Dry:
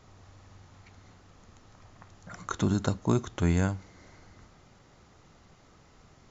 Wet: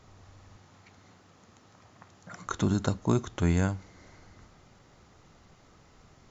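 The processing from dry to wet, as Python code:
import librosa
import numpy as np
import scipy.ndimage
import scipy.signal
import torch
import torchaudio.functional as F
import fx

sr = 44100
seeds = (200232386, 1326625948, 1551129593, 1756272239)

y = fx.highpass(x, sr, hz=120.0, slope=12, at=(0.56, 2.47))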